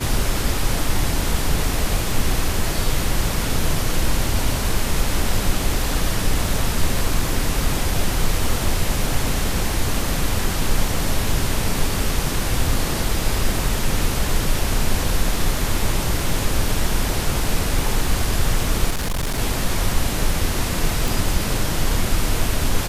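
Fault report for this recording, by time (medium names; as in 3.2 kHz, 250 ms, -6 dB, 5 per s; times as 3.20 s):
18.90–19.39 s: clipped -19 dBFS
21.08 s: pop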